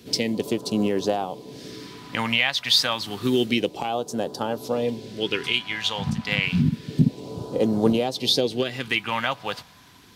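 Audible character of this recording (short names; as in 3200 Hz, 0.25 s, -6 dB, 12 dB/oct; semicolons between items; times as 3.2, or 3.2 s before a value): phasing stages 2, 0.29 Hz, lowest notch 360–2100 Hz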